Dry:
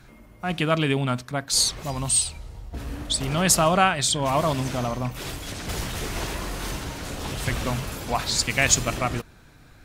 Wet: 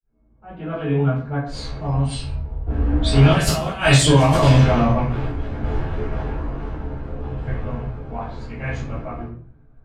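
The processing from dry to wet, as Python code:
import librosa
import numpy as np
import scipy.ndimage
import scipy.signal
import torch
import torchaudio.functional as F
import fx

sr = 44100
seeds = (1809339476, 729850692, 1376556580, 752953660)

y = fx.fade_in_head(x, sr, length_s=1.0)
y = fx.doppler_pass(y, sr, speed_mps=9, closest_m=5.1, pass_at_s=3.83)
y = fx.env_lowpass(y, sr, base_hz=850.0, full_db=-18.5)
y = fx.over_compress(y, sr, threshold_db=-27.0, ratio=-0.5)
y = fx.doubler(y, sr, ms=14.0, db=-5.0)
y = fx.room_shoebox(y, sr, seeds[0], volume_m3=43.0, walls='mixed', distance_m=3.1)
y = y * librosa.db_to_amplitude(-3.0)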